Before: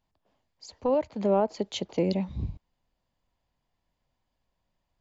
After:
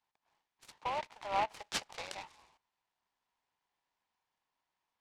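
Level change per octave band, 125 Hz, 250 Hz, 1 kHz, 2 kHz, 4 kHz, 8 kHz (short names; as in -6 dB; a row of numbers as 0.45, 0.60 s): -24.0 dB, -25.5 dB, -2.0 dB, +4.5 dB, -3.0 dB, n/a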